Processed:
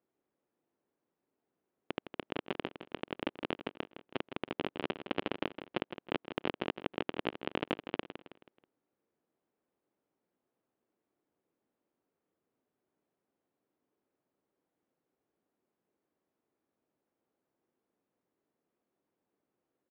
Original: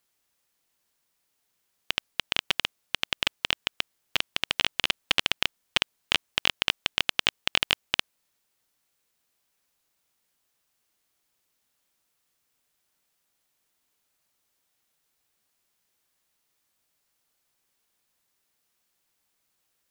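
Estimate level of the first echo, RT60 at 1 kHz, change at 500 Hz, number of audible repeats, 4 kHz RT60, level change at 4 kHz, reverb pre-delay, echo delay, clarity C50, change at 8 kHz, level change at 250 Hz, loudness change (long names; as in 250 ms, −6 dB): −10.0 dB, no reverb audible, +3.5 dB, 4, no reverb audible, −20.0 dB, no reverb audible, 161 ms, no reverb audible, below −35 dB, +6.0 dB, −12.5 dB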